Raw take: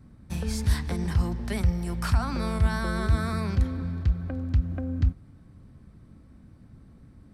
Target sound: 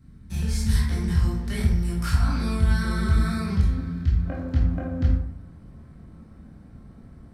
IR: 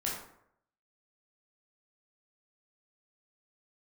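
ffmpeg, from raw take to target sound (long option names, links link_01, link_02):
-filter_complex "[0:a]asetnsamples=nb_out_samples=441:pad=0,asendcmd='4.25 equalizer g 4',equalizer=frequency=680:width=0.7:gain=-9[link_01];[1:a]atrim=start_sample=2205[link_02];[link_01][link_02]afir=irnorm=-1:irlink=0"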